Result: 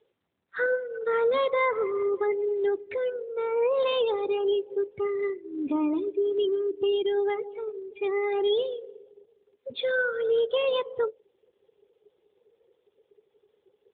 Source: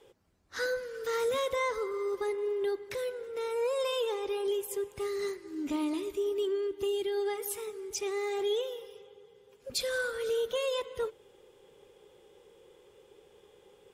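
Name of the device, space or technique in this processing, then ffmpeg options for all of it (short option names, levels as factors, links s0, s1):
mobile call with aggressive noise cancelling: -af "highpass=f=110:p=1,afftdn=nr=19:nf=-40,volume=2.24" -ar 8000 -c:a libopencore_amrnb -b:a 12200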